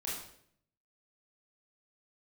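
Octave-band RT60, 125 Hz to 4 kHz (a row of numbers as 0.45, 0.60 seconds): 0.95, 0.80, 0.70, 0.60, 0.60, 0.55 seconds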